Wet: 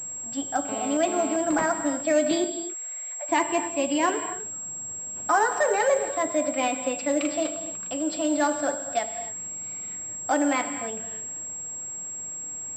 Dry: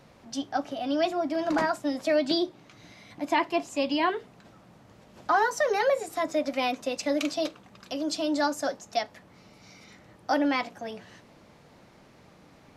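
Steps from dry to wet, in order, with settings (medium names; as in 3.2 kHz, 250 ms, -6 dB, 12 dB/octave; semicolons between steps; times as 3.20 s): 2.44–3.29 s: rippled Chebyshev high-pass 440 Hz, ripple 6 dB; gated-style reverb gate 310 ms flat, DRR 7.5 dB; 0.69–1.36 s: mobile phone buzz -37 dBFS; class-D stage that switches slowly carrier 7.6 kHz; trim +1.5 dB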